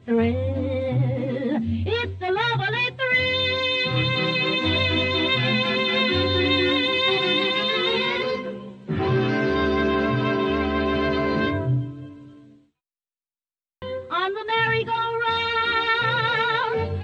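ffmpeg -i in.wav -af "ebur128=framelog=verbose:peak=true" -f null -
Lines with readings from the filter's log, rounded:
Integrated loudness:
  I:         -21.8 LUFS
  Threshold: -32.2 LUFS
Loudness range:
  LRA:         7.3 LU
  Threshold: -42.4 LUFS
  LRA low:   -27.3 LUFS
  LRA high:  -20.0 LUFS
True peak:
  Peak:       -9.4 dBFS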